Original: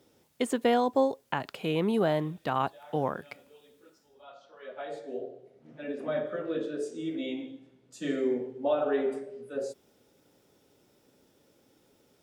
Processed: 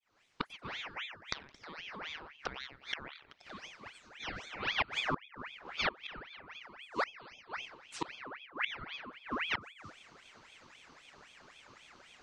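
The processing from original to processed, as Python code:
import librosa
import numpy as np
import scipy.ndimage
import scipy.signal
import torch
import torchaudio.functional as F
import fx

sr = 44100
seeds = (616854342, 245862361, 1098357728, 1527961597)

y = fx.fade_in_head(x, sr, length_s=0.78)
y = scipy.signal.sosfilt(scipy.signal.butter(4, 5400.0, 'lowpass', fs=sr, output='sos'), y)
y = fx.echo_feedback(y, sr, ms=91, feedback_pct=23, wet_db=-9)
y = fx.gate_flip(y, sr, shuts_db=-29.0, range_db=-26)
y = fx.low_shelf(y, sr, hz=170.0, db=-12.0)
y = fx.ring_lfo(y, sr, carrier_hz=1800.0, swing_pct=65, hz=3.8)
y = y * 10.0 ** (12.0 / 20.0)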